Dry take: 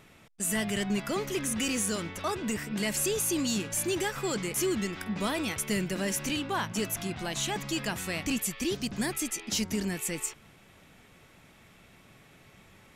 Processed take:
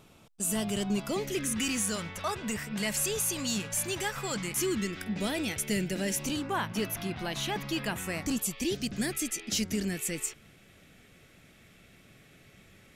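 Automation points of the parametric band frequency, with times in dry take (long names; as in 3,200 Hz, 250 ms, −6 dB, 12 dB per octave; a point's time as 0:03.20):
parametric band −11.5 dB 0.52 octaves
0:01.03 1,900 Hz
0:01.92 320 Hz
0:04.24 320 Hz
0:05.10 1,100 Hz
0:06.12 1,100 Hz
0:06.71 7,600 Hz
0:07.76 7,600 Hz
0:08.81 950 Hz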